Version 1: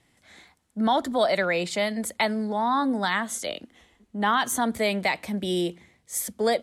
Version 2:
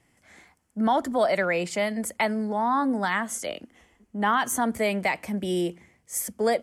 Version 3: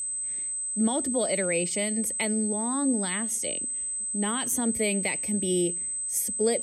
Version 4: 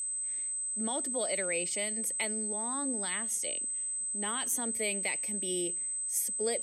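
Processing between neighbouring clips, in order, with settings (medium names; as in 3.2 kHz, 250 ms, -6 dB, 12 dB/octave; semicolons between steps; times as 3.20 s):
peaking EQ 3.8 kHz -12.5 dB 0.35 oct
whistle 8.2 kHz -29 dBFS; high-order bell 1.1 kHz -12 dB
high-pass 600 Hz 6 dB/octave; trim -3.5 dB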